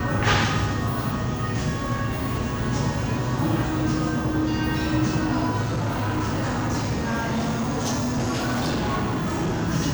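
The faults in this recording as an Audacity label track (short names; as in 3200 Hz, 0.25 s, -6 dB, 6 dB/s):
5.610000	9.620000	clipped -21 dBFS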